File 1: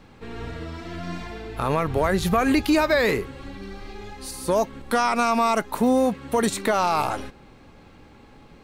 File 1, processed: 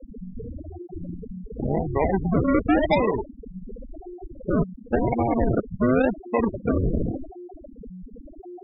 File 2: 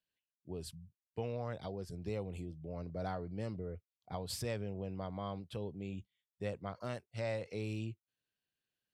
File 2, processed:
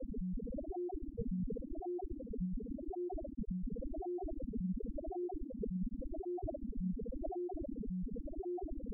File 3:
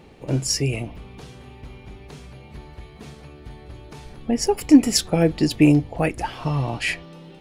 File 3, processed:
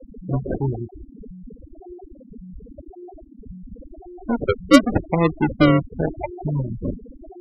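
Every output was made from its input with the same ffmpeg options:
-af "aeval=exprs='val(0)+0.0251*sin(2*PI*11000*n/s)':c=same,acrusher=samples=41:mix=1:aa=0.000001:lfo=1:lforange=24.6:lforate=0.91,afftfilt=real='re*gte(hypot(re,im),0.158)':imag='im*gte(hypot(re,im),0.158)':win_size=1024:overlap=0.75"

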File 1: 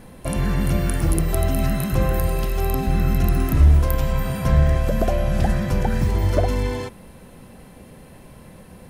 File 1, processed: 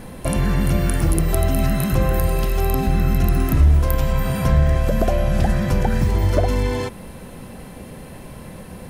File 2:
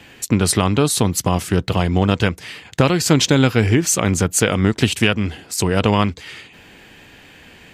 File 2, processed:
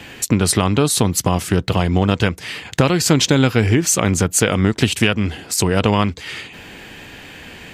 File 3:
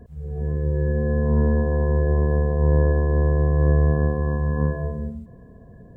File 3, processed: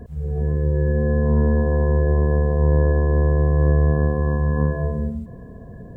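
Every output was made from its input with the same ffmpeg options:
-af "acompressor=threshold=-30dB:ratio=1.5,volume=7dB"

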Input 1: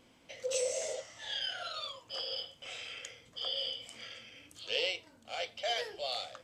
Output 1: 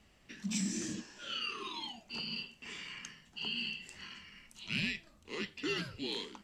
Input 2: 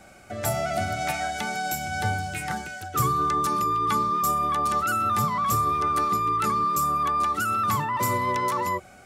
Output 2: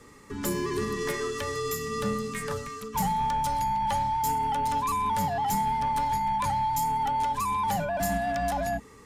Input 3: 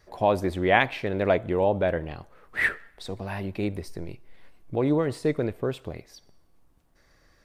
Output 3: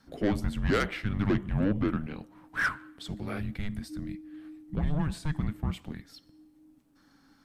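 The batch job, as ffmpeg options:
-af "asoftclip=type=tanh:threshold=-18.5dB,afreqshift=-310,volume=-1.5dB"

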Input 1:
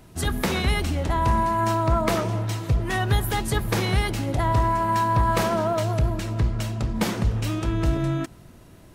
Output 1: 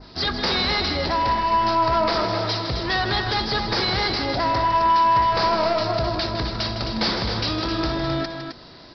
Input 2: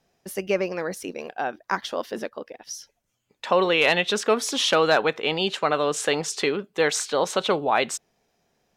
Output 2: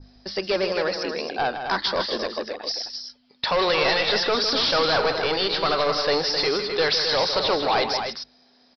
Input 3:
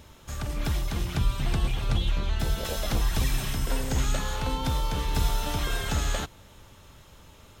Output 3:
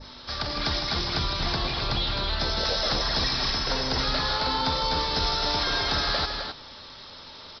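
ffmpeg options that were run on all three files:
-filter_complex "[0:a]asplit=2[a][b];[b]highpass=f=720:p=1,volume=15dB,asoftclip=type=tanh:threshold=-6.5dB[c];[a][c]amix=inputs=2:normalize=0,lowpass=f=3.3k:p=1,volume=-6dB,aeval=exprs='val(0)+0.01*(sin(2*PI*50*n/s)+sin(2*PI*2*50*n/s)/2+sin(2*PI*3*50*n/s)/3+sin(2*PI*4*50*n/s)/4+sin(2*PI*5*50*n/s)/5)':c=same,aexciter=amount=9.8:drive=3.7:freq=4.1k,aresample=11025,asoftclip=type=tanh:threshold=-17.5dB,aresample=44100,bandreject=f=50:t=h:w=6,bandreject=f=100:t=h:w=6,bandreject=f=150:t=h:w=6,bandreject=f=200:t=h:w=6,adynamicequalizer=threshold=0.0178:dfrequency=3200:dqfactor=1.3:tfrequency=3200:tqfactor=1.3:attack=5:release=100:ratio=0.375:range=2.5:mode=cutabove:tftype=bell,asplit=2[d][e];[e]aecho=0:1:157.4|262.4:0.355|0.447[f];[d][f]amix=inputs=2:normalize=0"

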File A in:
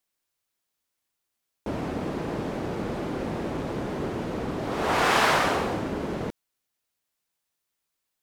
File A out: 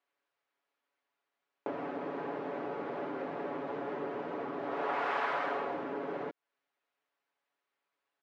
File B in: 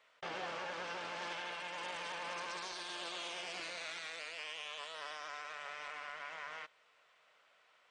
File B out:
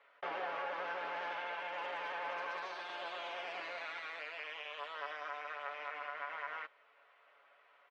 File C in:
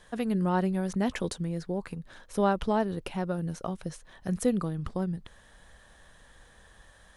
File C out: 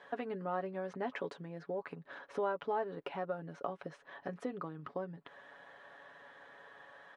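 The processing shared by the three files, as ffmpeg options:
-af "aecho=1:1:7.1:0.59,acompressor=threshold=-38dB:ratio=3,highpass=370,lowpass=2k,volume=4dB"

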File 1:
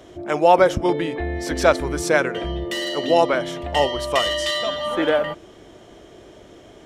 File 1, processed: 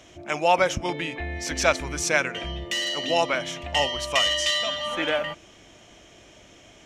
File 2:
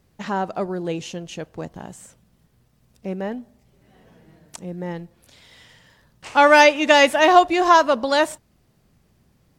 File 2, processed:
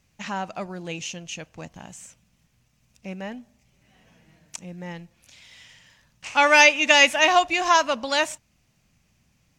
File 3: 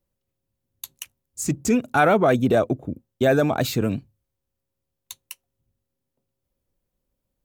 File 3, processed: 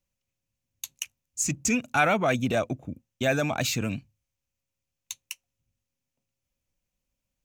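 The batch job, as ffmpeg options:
-af "equalizer=f=400:t=o:w=0.67:g=-8,equalizer=f=2.5k:t=o:w=0.67:g=10,equalizer=f=6.3k:t=o:w=0.67:g=10,volume=-5dB"

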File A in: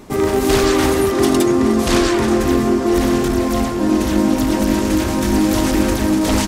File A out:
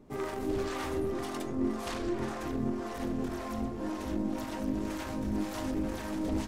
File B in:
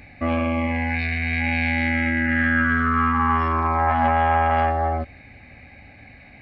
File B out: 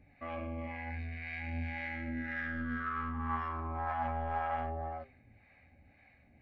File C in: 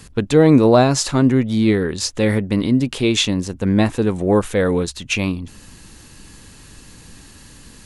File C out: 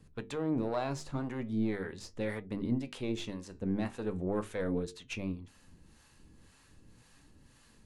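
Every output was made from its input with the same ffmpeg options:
-filter_complex "[0:a]aeval=exprs='0.891*(cos(1*acos(clip(val(0)/0.891,-1,1)))-cos(1*PI/2))+0.126*(cos(3*acos(clip(val(0)/0.891,-1,1)))-cos(3*PI/2))+0.0251*(cos(6*acos(clip(val(0)/0.891,-1,1)))-cos(6*PI/2))':c=same,highshelf=f=2.8k:g=-7.5,alimiter=limit=-12.5dB:level=0:latency=1:release=18,acrossover=split=580[a][b];[a]aeval=exprs='val(0)*(1-0.7/2+0.7/2*cos(2*PI*1.9*n/s))':c=same[c];[b]aeval=exprs='val(0)*(1-0.7/2-0.7/2*cos(2*PI*1.9*n/s))':c=same[d];[c][d]amix=inputs=2:normalize=0,bandreject=f=50:t=h:w=6,bandreject=f=100:t=h:w=6,bandreject=f=150:t=h:w=6,bandreject=f=200:t=h:w=6,bandreject=f=250:t=h:w=6,bandreject=f=300:t=h:w=6,bandreject=f=350:t=h:w=6,bandreject=f=400:t=h:w=6,bandreject=f=450:t=h:w=6,flanger=delay=6.3:depth=8.1:regen=74:speed=0.41:shape=triangular,volume=-3.5dB"

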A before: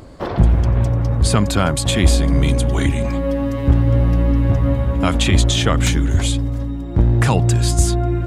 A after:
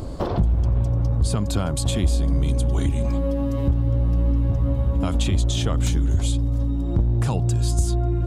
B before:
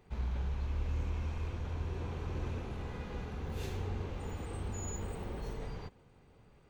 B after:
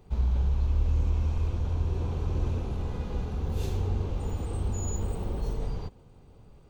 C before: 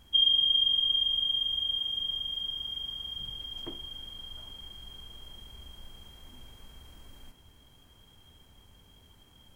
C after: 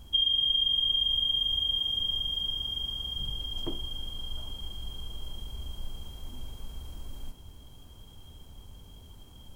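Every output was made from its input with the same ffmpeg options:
-af "equalizer=f=1.9k:w=1.4:g=-9,acompressor=threshold=-29dB:ratio=4,lowshelf=f=88:g=7.5,volume=5.5dB"

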